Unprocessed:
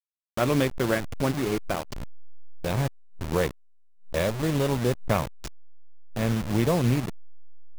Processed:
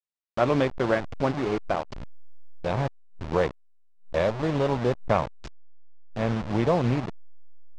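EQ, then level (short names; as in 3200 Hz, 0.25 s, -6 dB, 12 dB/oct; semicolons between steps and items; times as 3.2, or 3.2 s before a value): LPF 6000 Hz 12 dB/oct; dynamic EQ 780 Hz, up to +7 dB, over -39 dBFS, Q 0.75; air absorption 57 m; -2.5 dB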